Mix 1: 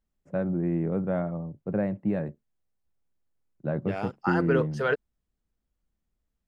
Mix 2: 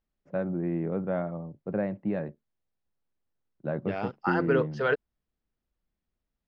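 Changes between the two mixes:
first voice: add low shelf 160 Hz -8.5 dB; master: add LPF 5200 Hz 24 dB/oct

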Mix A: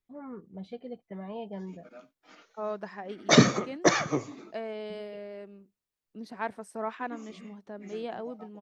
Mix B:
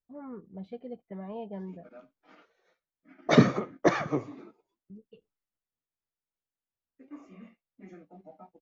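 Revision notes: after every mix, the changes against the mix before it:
second voice: muted; background: add air absorption 57 m; master: add LPF 1700 Hz 6 dB/oct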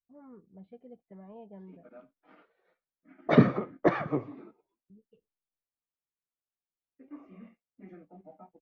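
speech -8.5 dB; master: add air absorption 340 m

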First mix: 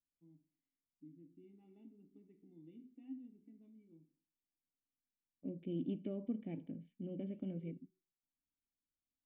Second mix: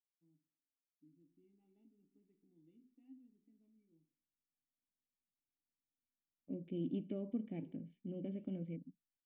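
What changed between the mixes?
first voice -10.5 dB; second voice: entry +1.05 s

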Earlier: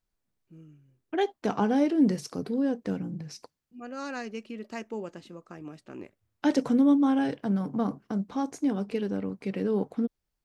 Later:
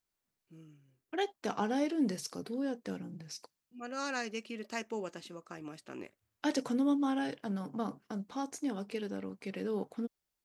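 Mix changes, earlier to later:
second voice -5.0 dB; master: add tilt +2 dB/oct

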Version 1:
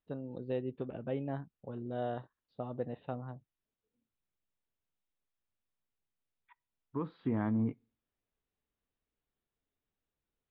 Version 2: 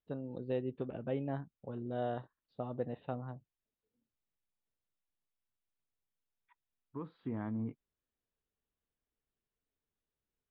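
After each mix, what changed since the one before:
second voice -6.0 dB; reverb: off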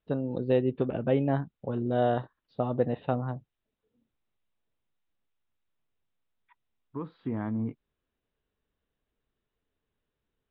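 first voice +11.0 dB; second voice +6.5 dB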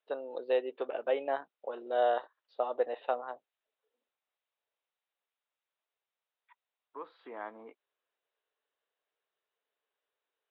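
master: add HPF 490 Hz 24 dB/oct

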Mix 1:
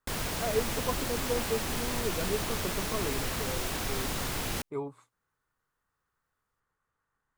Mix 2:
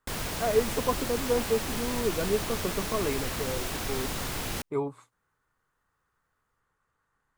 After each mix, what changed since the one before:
speech +5.5 dB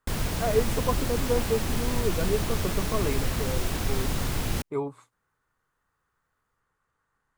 background: add low shelf 250 Hz +10 dB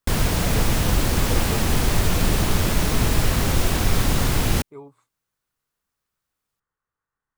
speech -11.0 dB; background +8.0 dB

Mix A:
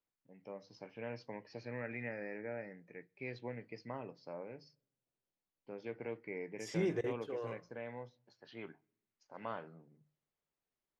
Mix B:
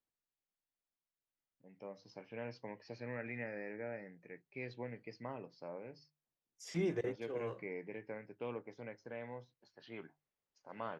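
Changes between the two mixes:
first voice: entry +1.35 s; reverb: off

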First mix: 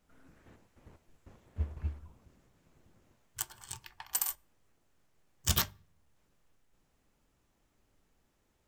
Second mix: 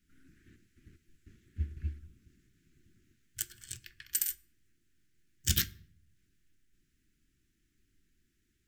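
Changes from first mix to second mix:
background: send +9.0 dB; master: add Chebyshev band-stop 350–1600 Hz, order 3

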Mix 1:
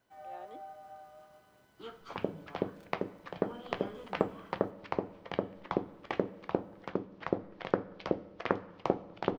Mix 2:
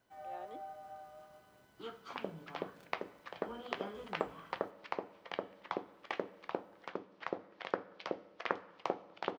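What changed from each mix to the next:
second sound: add HPF 950 Hz 6 dB/oct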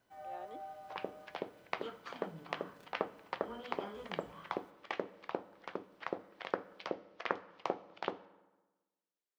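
second sound: entry -1.20 s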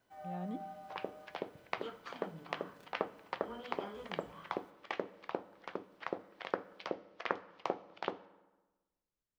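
speech: remove steep high-pass 350 Hz 36 dB/oct

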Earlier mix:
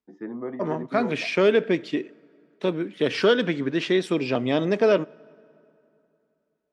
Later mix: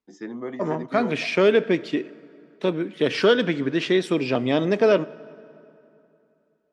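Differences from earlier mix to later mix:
first voice: remove LPF 1500 Hz 12 dB/oct; second voice: send +8.0 dB

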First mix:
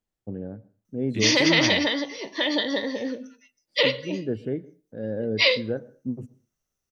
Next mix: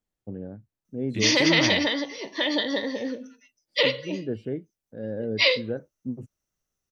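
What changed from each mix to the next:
reverb: off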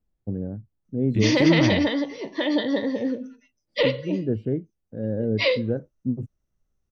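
master: add tilt -3 dB/oct

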